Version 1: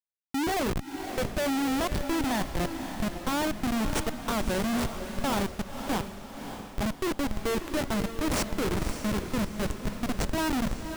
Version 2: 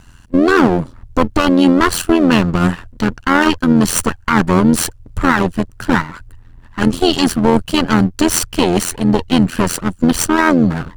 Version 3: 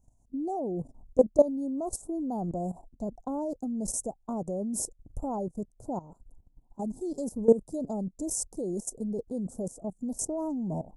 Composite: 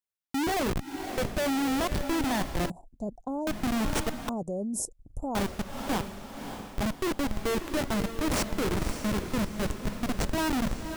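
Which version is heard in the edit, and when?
1
0:02.70–0:03.47: punch in from 3
0:04.29–0:05.35: punch in from 3
not used: 2

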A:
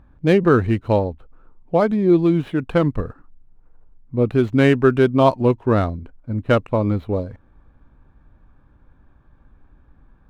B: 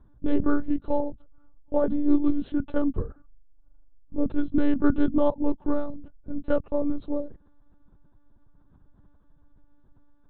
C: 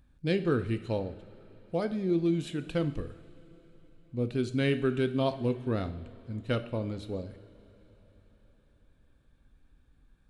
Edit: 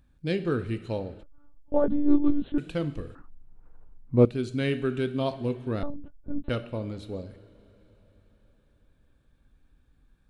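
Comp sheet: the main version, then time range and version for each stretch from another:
C
0:01.23–0:02.58: punch in from B
0:03.15–0:04.25: punch in from A
0:05.83–0:06.49: punch in from B

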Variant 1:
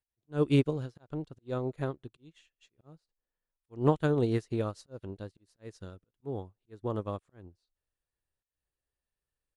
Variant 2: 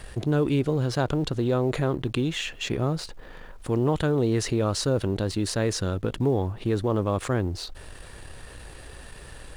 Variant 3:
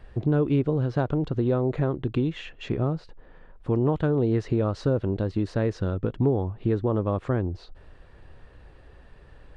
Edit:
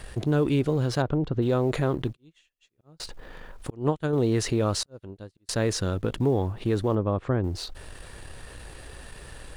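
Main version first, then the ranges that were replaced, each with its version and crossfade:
2
0:01.02–0:01.42: punch in from 3
0:02.14–0:03.00: punch in from 1
0:03.70–0:04.13: punch in from 1
0:04.83–0:05.49: punch in from 1
0:06.95–0:07.44: punch in from 3

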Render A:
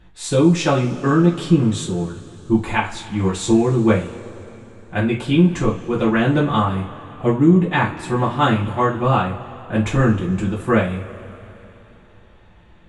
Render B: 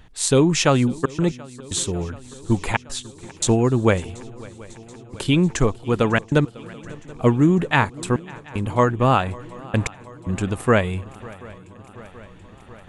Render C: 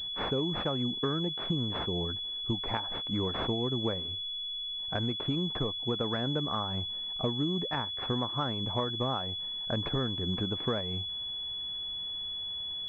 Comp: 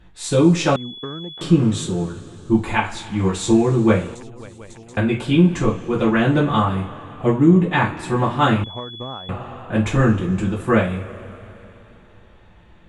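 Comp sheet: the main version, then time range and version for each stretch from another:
A
0:00.76–0:01.41: punch in from C
0:04.15–0:04.97: punch in from B
0:08.64–0:09.29: punch in from C

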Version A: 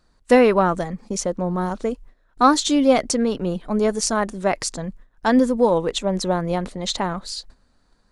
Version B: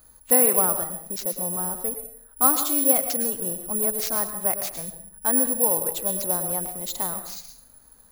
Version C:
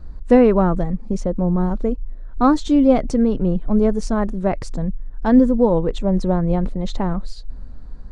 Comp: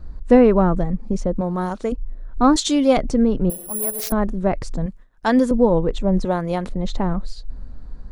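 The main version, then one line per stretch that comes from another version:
C
0:01.41–0:01.92: punch in from A
0:02.56–0:02.97: punch in from A
0:03.50–0:04.12: punch in from B
0:04.86–0:05.51: punch in from A
0:06.25–0:06.69: punch in from A

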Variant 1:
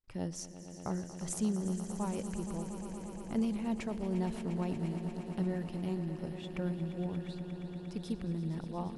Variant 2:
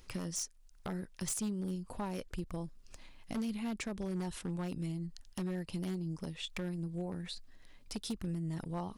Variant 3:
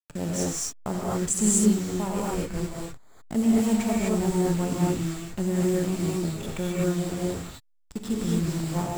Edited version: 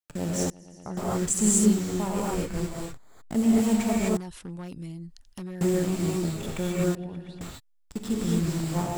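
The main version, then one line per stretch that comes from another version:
3
0:00.50–0:00.97: punch in from 1
0:04.17–0:05.61: punch in from 2
0:06.95–0:07.41: punch in from 1

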